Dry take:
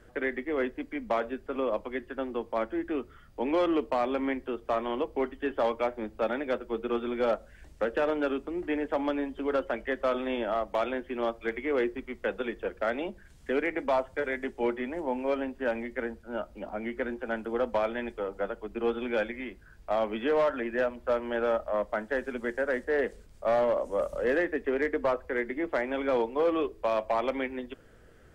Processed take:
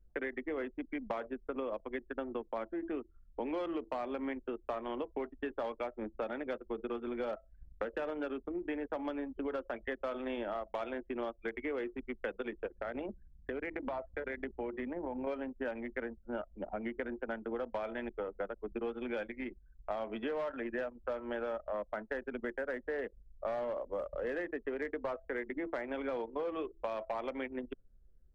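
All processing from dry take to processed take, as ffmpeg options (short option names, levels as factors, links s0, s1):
-filter_complex "[0:a]asettb=1/sr,asplit=3[s0][s1][s2];[s0]atrim=end=12.664[s3];[s1]atrim=start=12.66:end=15.27,asetpts=PTS-STARTPTS,afade=t=in:d=0.004:c=qsin,afade=t=out:st=2.606:d=0.004:c=qsin,acompressor=threshold=0.0224:ratio=4:attack=3.2:release=140:knee=1:detection=peak,aeval=exprs='val(0)+0.002*(sin(2*PI*60*n/s)+sin(2*PI*2*60*n/s)/2+sin(2*PI*3*60*n/s)/3+sin(2*PI*4*60*n/s)/4+sin(2*PI*5*60*n/s)/5)':c=same[s4];[s2]atrim=start=15.266[s5];[s3][s4]acrossfade=d=0.004:c1=hsin:c2=qsin[s6];[s6][s5]acrossfade=d=0.004:c1=qsin:c2=hsin,bandreject=f=329.8:t=h:w=4,bandreject=f=659.6:t=h:w=4,bandreject=f=989.4:t=h:w=4,bandreject=f=1319.2:t=h:w=4,anlmdn=2.51,acompressor=threshold=0.0158:ratio=6,volume=1.12"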